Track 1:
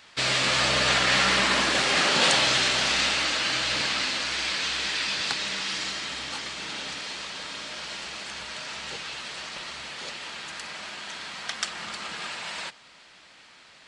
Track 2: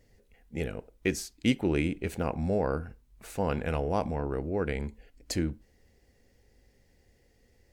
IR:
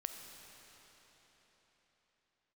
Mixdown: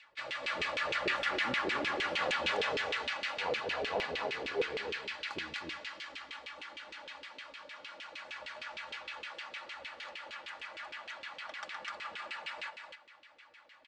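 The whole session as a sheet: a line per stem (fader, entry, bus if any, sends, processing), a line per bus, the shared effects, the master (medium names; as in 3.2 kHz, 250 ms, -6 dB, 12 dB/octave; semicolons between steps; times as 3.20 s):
-4.0 dB, 0.00 s, send -9 dB, echo send -4 dB, resonant low shelf 160 Hz +9.5 dB, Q 1.5; comb 3.5 ms, depth 63%; auto duck -10 dB, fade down 0.25 s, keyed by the second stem
+1.5 dB, 0.00 s, no send, echo send -5 dB, chorus voices 4, 0.3 Hz, delay 23 ms, depth 1.5 ms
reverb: on, RT60 4.4 s, pre-delay 5 ms
echo: delay 251 ms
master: LFO band-pass saw down 6.5 Hz 380–2900 Hz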